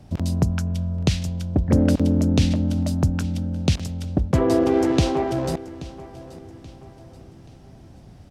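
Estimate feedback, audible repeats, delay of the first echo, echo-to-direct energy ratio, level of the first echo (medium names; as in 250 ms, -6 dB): 42%, 3, 830 ms, -16.5 dB, -17.5 dB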